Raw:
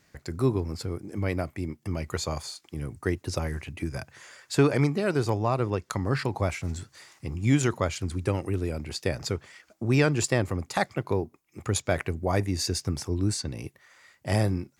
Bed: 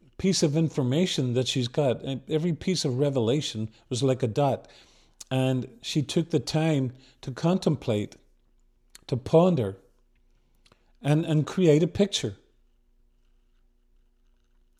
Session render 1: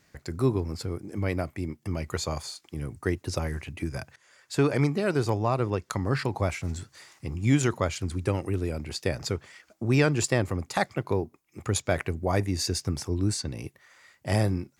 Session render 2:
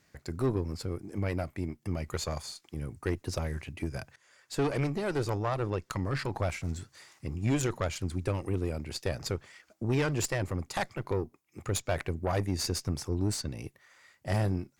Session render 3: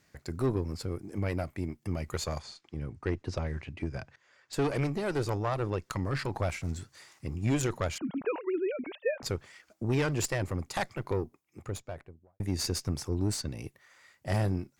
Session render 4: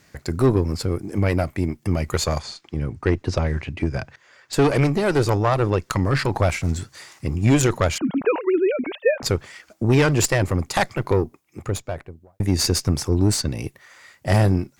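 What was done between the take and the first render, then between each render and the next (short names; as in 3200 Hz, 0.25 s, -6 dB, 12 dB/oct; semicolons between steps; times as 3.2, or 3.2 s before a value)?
4.16–5.03 fade in equal-power, from -21.5 dB
tube stage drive 22 dB, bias 0.65
2.39–4.53 air absorption 110 m; 7.98–9.23 sine-wave speech; 11.17–12.4 studio fade out
gain +11.5 dB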